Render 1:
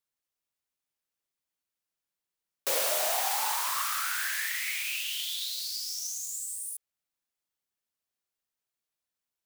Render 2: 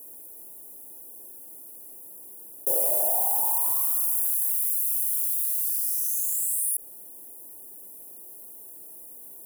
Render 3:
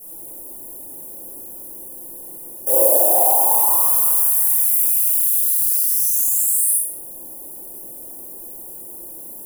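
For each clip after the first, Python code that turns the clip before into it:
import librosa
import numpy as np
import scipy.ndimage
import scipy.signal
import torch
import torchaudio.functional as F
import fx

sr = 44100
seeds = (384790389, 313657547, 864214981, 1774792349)

y1 = fx.curve_eq(x, sr, hz=(140.0, 350.0, 950.0, 1500.0, 3900.0, 11000.0, 16000.0), db=(0, 13, 1, -30, -29, 15, 13))
y1 = fx.env_flatten(y1, sr, amount_pct=70)
y1 = y1 * 10.0 ** (-6.5 / 20.0)
y2 = fx.room_shoebox(y1, sr, seeds[0], volume_m3=620.0, walls='mixed', distance_m=6.9)
y2 = y2 * 10.0 ** (-1.5 / 20.0)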